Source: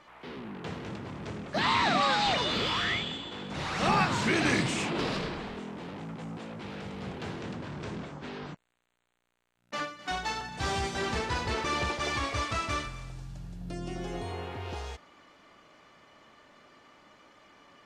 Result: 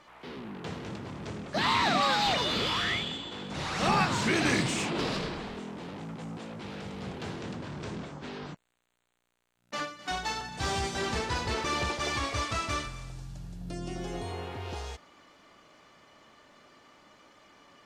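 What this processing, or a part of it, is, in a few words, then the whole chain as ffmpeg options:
exciter from parts: -filter_complex "[0:a]asplit=2[s0][s1];[s1]highpass=3100,asoftclip=type=tanh:threshold=0.02,volume=0.501[s2];[s0][s2]amix=inputs=2:normalize=0"

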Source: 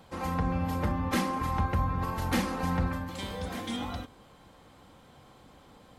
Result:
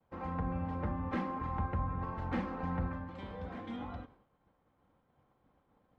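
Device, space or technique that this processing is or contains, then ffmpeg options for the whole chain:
hearing-loss simulation: -af "lowpass=1800,agate=range=0.0224:threshold=0.00447:ratio=3:detection=peak,volume=0.473"

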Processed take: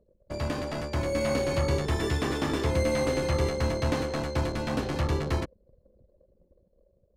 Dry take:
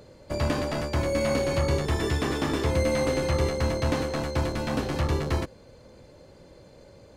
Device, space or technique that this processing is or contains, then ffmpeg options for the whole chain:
voice memo with heavy noise removal: -af "anlmdn=0.251,dynaudnorm=f=270:g=7:m=1.5,volume=0.562"

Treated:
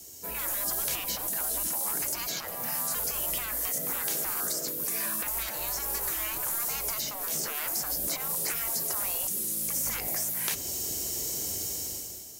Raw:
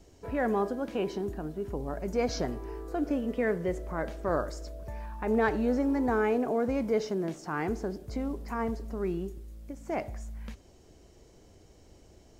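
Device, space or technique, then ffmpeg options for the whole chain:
FM broadcast chain: -filter_complex "[0:a]highpass=80,dynaudnorm=f=180:g=7:m=5.62,acrossover=split=270|3200[s0][s1][s2];[s0]acompressor=threshold=0.0891:ratio=4[s3];[s1]acompressor=threshold=0.0447:ratio=4[s4];[s2]acompressor=threshold=0.00316:ratio=4[s5];[s3][s4][s5]amix=inputs=3:normalize=0,aemphasis=mode=production:type=75fm,alimiter=limit=0.141:level=0:latency=1:release=77,asoftclip=type=hard:threshold=0.0891,lowpass=f=15000:w=0.5412,lowpass=f=15000:w=1.3066,aemphasis=mode=production:type=75fm,afftfilt=real='re*lt(hypot(re,im),0.0794)':imag='im*lt(hypot(re,im),0.0794)':win_size=1024:overlap=0.75"

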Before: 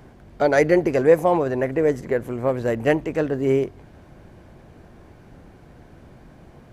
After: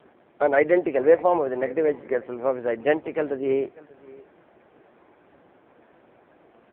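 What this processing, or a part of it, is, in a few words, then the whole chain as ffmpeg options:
satellite phone: -af "highpass=360,lowpass=3400,aecho=1:1:591:0.075" -ar 8000 -c:a libopencore_amrnb -b:a 5900

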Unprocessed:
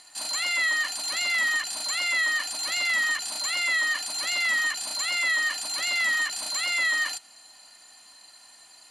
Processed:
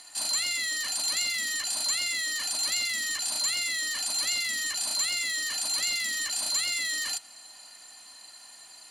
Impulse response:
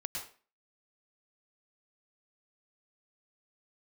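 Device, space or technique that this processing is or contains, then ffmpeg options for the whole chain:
one-band saturation: -filter_complex "[0:a]highshelf=f=5800:g=3.5,acrossover=split=360|3100[s0][s1][s2];[s1]asoftclip=type=tanh:threshold=0.0106[s3];[s0][s3][s2]amix=inputs=3:normalize=0,volume=1.12"

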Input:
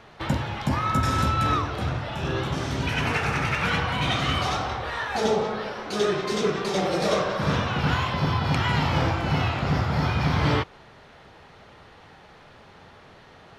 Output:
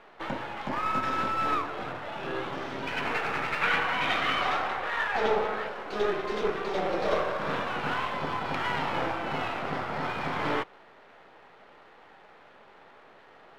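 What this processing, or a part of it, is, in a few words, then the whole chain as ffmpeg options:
crystal radio: -filter_complex "[0:a]highpass=320,lowpass=2600,aeval=exprs='if(lt(val(0),0),0.447*val(0),val(0))':c=same,asettb=1/sr,asplit=3[s0][s1][s2];[s0]atrim=end=3.614[s3];[s1]atrim=start=3.61:end=5.67,asetpts=PTS-STARTPTS,afade=t=in:d=0.004:c=qsin,afade=t=out:st=2.056:d=0.004:c=qsin,equalizer=f=2000:t=o:w=1.7:g=5.5[s4];[s2]atrim=start=5.666[s5];[s3][s4]acrossfade=d=0.004:c1=hsin:c2=qsin[s6];[s6][s5]acrossfade=d=0.004:c1=qsin:c2=hsin"

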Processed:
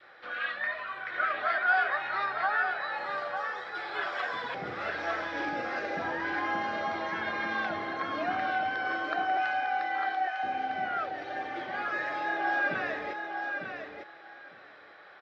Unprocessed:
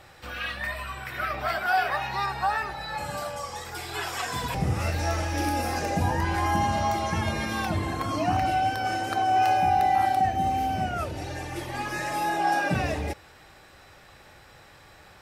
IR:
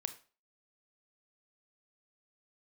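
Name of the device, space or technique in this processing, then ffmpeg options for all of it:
phone earpiece: -filter_complex "[0:a]adynamicequalizer=threshold=0.0158:dfrequency=760:dqfactor=1.3:tfrequency=760:tqfactor=1.3:attack=5:release=100:ratio=0.375:range=2.5:mode=cutabove:tftype=bell,lowpass=9700,asettb=1/sr,asplit=3[s0][s1][s2];[s0]atrim=end=9.374[s3];[s1]atrim=start=9.37:end=10.43,asetpts=PTS-STARTPTS,afade=t=in:d=0.004:c=qsin,afade=t=out:st=1.056:d=0.004:c=qsin,highpass=f=740:w=0.5412,highpass=f=740:w=1.3066[s4];[s2]atrim=start=10.426[s5];[s3][s4]acrossfade=d=0.004:c1=hsin:c2=qsin[s6];[s6][s5]acrossfade=d=0.004:c1=qsin:c2=hsin,highpass=460,equalizer=f=910:t=q:w=4:g=-6,equalizer=f=1500:t=q:w=4:g=4,equalizer=f=2700:t=q:w=4:g=-9,lowpass=f=3400:w=0.5412,lowpass=f=3400:w=1.3066,aecho=1:1:902|1804|2706:0.501|0.0752|0.0113"

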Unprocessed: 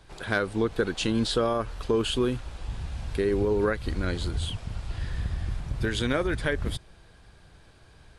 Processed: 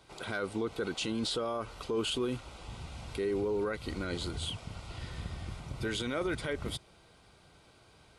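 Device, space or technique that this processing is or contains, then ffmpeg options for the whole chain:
PA system with an anti-feedback notch: -af "highpass=f=190:p=1,asuperstop=centerf=1700:order=4:qfactor=6.3,alimiter=limit=0.0668:level=0:latency=1:release=12,volume=0.841"

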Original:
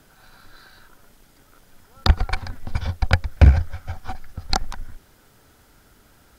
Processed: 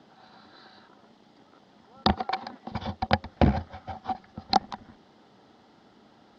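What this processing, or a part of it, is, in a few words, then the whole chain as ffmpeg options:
kitchen radio: -filter_complex "[0:a]asettb=1/sr,asplit=3[s0][s1][s2];[s0]atrim=end=2.164[s3];[s1]atrim=start=2.16:end=2.72,asetpts=PTS-STARTPTS,afade=t=in:d=0.004:c=qsin,afade=t=out:st=0.556:d=0.004:c=qsin,highpass=240[s4];[s2]atrim=start=2.716[s5];[s3][s4]acrossfade=d=0.004:c1=hsin:c2=qsin[s6];[s6][s5]acrossfade=d=0.004:c1=qsin:c2=hsin,highpass=180,equalizer=f=210:t=q:w=4:g=7,equalizer=f=330:t=q:w=4:g=3,equalizer=f=790:t=q:w=4:g=6,equalizer=f=1500:t=q:w=4:g=-8,equalizer=f=2400:t=q:w=4:g=-8,lowpass=f=4500:w=0.5412,lowpass=f=4500:w=1.3066"

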